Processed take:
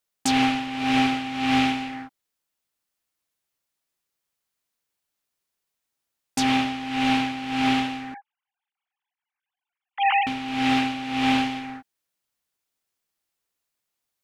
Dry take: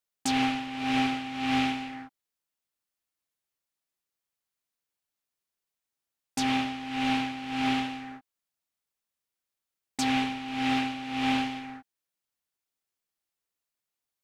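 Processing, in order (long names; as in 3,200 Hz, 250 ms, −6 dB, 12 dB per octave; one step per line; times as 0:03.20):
0:08.14–0:10.27: three sine waves on the formant tracks
level +5.5 dB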